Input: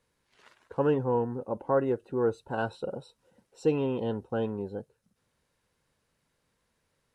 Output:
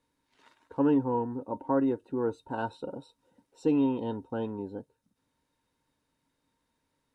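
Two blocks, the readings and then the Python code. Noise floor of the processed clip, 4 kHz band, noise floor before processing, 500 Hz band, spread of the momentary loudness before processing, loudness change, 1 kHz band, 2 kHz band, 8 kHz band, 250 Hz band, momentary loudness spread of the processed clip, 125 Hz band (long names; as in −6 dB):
−80 dBFS, −3.5 dB, −77 dBFS, −4.0 dB, 11 LU, 0.0 dB, 0.0 dB, −4.5 dB, can't be measured, +4.5 dB, 15 LU, −4.0 dB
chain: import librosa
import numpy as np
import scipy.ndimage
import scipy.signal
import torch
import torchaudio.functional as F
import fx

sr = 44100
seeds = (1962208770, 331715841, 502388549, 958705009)

y = fx.small_body(x, sr, hz=(280.0, 920.0, 3700.0), ring_ms=90, db=14)
y = y * librosa.db_to_amplitude(-4.5)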